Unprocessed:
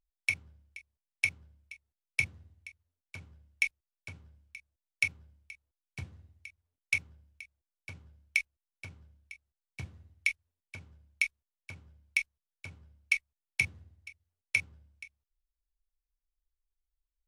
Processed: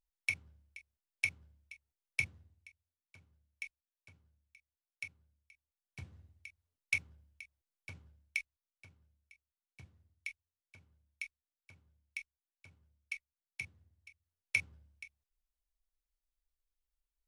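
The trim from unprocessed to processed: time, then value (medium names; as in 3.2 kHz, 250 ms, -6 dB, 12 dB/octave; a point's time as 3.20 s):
2.21 s -4.5 dB
3.21 s -15.5 dB
5.51 s -15.5 dB
6.19 s -3.5 dB
7.94 s -3.5 dB
8.92 s -14 dB
13.75 s -14 dB
14.59 s -3 dB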